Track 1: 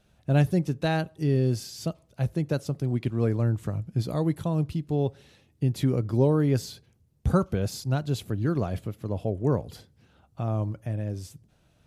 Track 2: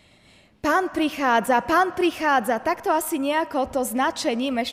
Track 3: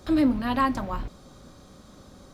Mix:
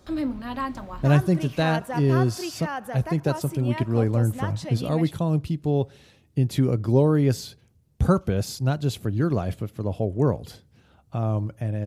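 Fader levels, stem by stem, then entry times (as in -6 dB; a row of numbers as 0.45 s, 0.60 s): +3.0 dB, -12.0 dB, -6.0 dB; 0.75 s, 0.40 s, 0.00 s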